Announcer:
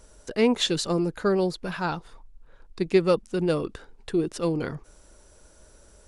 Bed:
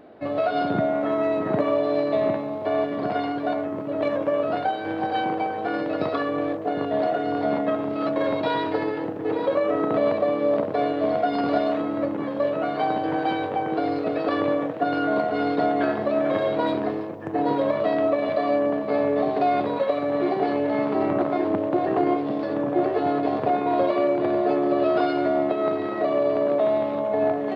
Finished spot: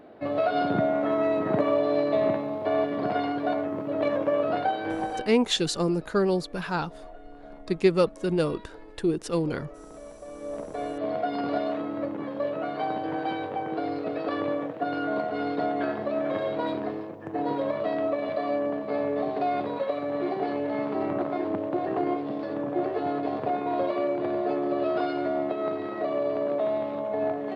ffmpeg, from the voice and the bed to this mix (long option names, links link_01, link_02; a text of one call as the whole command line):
ffmpeg -i stem1.wav -i stem2.wav -filter_complex "[0:a]adelay=4900,volume=-0.5dB[link_01];[1:a]volume=16dB,afade=type=out:start_time=4.94:duration=0.38:silence=0.0841395,afade=type=in:start_time=10.2:duration=1.04:silence=0.133352[link_02];[link_01][link_02]amix=inputs=2:normalize=0" out.wav